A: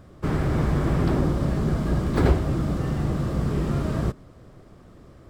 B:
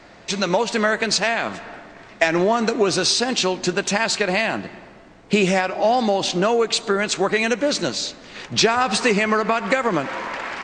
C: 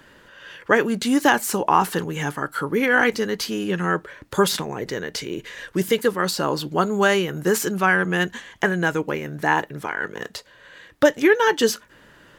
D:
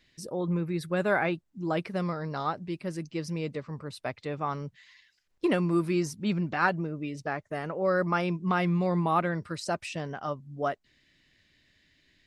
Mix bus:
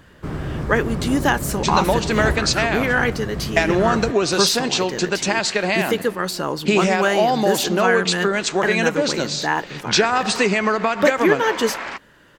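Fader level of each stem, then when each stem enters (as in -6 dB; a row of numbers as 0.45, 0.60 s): -3.5, 0.0, -1.5, -17.5 dB; 0.00, 1.35, 0.00, 0.40 s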